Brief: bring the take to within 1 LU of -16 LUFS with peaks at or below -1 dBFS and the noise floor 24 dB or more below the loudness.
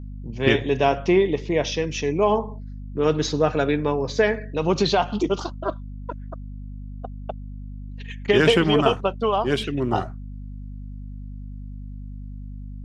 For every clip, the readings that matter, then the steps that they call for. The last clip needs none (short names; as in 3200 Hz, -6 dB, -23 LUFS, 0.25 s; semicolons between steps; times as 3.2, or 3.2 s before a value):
hum 50 Hz; harmonics up to 250 Hz; hum level -33 dBFS; loudness -22.0 LUFS; peak -3.5 dBFS; loudness target -16.0 LUFS
-> de-hum 50 Hz, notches 5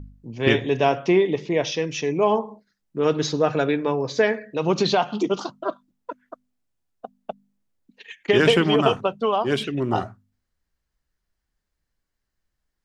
hum none; loudness -22.0 LUFS; peak -3.0 dBFS; loudness target -16.0 LUFS
-> gain +6 dB; limiter -1 dBFS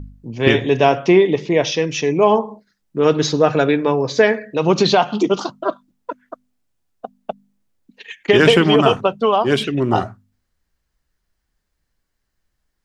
loudness -16.5 LUFS; peak -1.0 dBFS; noise floor -74 dBFS